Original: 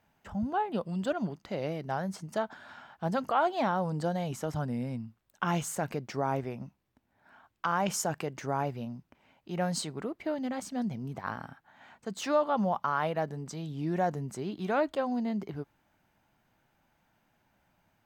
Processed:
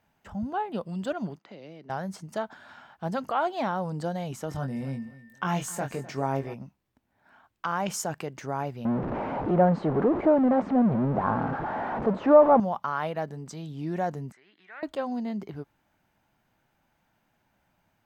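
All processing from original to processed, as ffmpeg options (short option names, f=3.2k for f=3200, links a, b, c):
-filter_complex "[0:a]asettb=1/sr,asplit=3[a][b][c];[a]atrim=end=1.394[d];[b]atrim=start=1.39:end=1.9,asetpts=PTS-STARTPTS,afade=t=in:d=0.004:c=qsin,afade=t=out:st=0.506:d=0.004:c=qsin,bass=f=250:g=-8,treble=f=4k:g=-12,acrossover=split=290|3000[e][f][g];[f]acompressor=threshold=-49dB:ratio=6:attack=3.2:release=140:knee=2.83:detection=peak[h];[e][h][g]amix=inputs=3:normalize=0,highpass=190,lowpass=7.7k[i];[c]atrim=start=1.896[j];[d][i]acrossfade=d=0.004:c1=hsin:c2=qsin[k];[k][j]acrossfade=d=0.004:c1=qsin:c2=hsin,asettb=1/sr,asplit=3[l][m][n];[l]atrim=end=4.494[o];[m]atrim=start=4.49:end=6.54,asetpts=PTS-STARTPTS,afade=t=in:d=0.004:c=qsin,afade=t=out:st=2.046:d=0.004:c=qsin,aeval=exprs='val(0)+0.00224*sin(2*PI*1800*n/s)':c=same,asplit=2[p][q];[q]adelay=22,volume=-5dB[r];[p][r]amix=inputs=2:normalize=0,atrim=end_sample=90405,aecho=1:1:255|510:0.126|0.0327,atrim=end_sample=90405[s];[n]atrim=start=6.536[t];[o][s]acrossfade=d=0.004:c1=hsin:c2=qsin[u];[u][t]acrossfade=d=0.004:c1=qsin:c2=hsin,asettb=1/sr,asplit=3[v][w][x];[v]atrim=end=8.854[y];[w]atrim=start=8.85:end=12.6,asetpts=PTS-STARTPTS,afade=t=in:d=0.004:c=qsin,afade=t=out:st=3.746:d=0.004:c=qsin,aeval=exprs='val(0)+0.5*0.0316*sgn(val(0))':c=same,lowpass=1.1k,equalizer=f=550:w=0.31:g=10[z];[x]atrim=start=12.596[aa];[y][z]acrossfade=d=0.004:c1=hsin:c2=qsin[ab];[ab][aa]acrossfade=d=0.004:c1=qsin:c2=hsin,asettb=1/sr,asplit=3[ac][ad][ae];[ac]atrim=end=14.324[af];[ad]atrim=start=14.32:end=14.83,asetpts=PTS-STARTPTS,afade=t=in:d=0.004:c=qsin,afade=t=out:st=0.506:d=0.004:c=qsin,bandpass=f=1.9k:t=q:w=5.2,acompressor=mode=upward:threshold=-54dB:ratio=2.5:attack=3.2:release=140:knee=2.83:detection=peak[ag];[ae]atrim=start=14.826[ah];[af][ag]acrossfade=d=0.004:c1=hsin:c2=qsin[ai];[ai][ah]acrossfade=d=0.004:c1=qsin:c2=hsin"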